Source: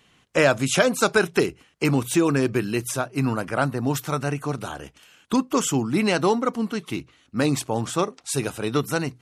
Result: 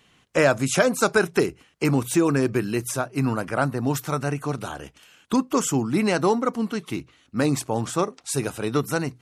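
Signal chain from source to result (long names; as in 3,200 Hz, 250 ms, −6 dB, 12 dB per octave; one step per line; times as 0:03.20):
dynamic equaliser 3,200 Hz, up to −6 dB, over −41 dBFS, Q 1.8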